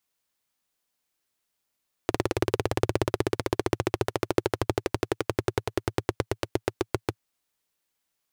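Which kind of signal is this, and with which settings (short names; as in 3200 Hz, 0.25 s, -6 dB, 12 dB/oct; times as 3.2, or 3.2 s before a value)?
single-cylinder engine model, changing speed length 5.09 s, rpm 2200, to 800, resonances 110/360 Hz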